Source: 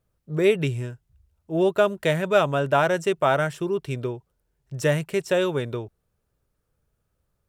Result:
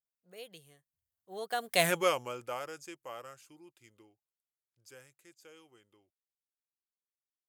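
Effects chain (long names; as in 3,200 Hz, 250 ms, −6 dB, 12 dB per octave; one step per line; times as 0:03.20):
source passing by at 0:01.88, 50 m/s, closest 3.9 metres
RIAA equalisation recording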